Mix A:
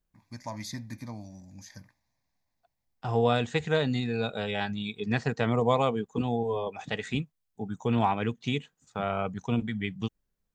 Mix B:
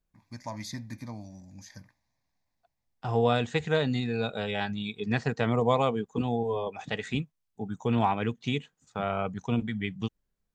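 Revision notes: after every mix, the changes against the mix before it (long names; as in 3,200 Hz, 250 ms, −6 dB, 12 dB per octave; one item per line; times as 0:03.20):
master: add high-shelf EQ 11,000 Hz −5 dB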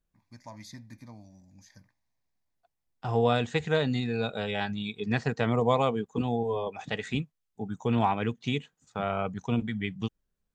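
first voice −7.5 dB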